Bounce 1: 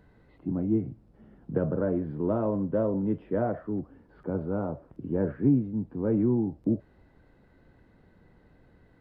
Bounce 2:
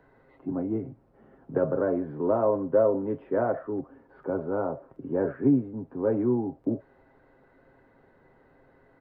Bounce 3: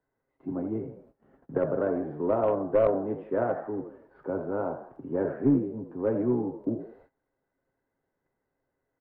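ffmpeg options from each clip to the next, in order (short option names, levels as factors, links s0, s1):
-filter_complex "[0:a]acrossover=split=340 2000:gain=0.224 1 0.224[s0][s1][s2];[s0][s1][s2]amix=inputs=3:normalize=0,aecho=1:1:7.5:0.45,volume=1.88"
-filter_complex "[0:a]asplit=5[s0][s1][s2][s3][s4];[s1]adelay=81,afreqshift=55,volume=0.316[s5];[s2]adelay=162,afreqshift=110,volume=0.123[s6];[s3]adelay=243,afreqshift=165,volume=0.0479[s7];[s4]adelay=324,afreqshift=220,volume=0.0188[s8];[s0][s5][s6][s7][s8]amix=inputs=5:normalize=0,agate=range=0.1:threshold=0.002:ratio=16:detection=peak,aeval=exprs='0.335*(cos(1*acos(clip(val(0)/0.335,-1,1)))-cos(1*PI/2))+0.0944*(cos(2*acos(clip(val(0)/0.335,-1,1)))-cos(2*PI/2))+0.0237*(cos(4*acos(clip(val(0)/0.335,-1,1)))-cos(4*PI/2))+0.00422*(cos(7*acos(clip(val(0)/0.335,-1,1)))-cos(7*PI/2))':c=same,volume=0.841"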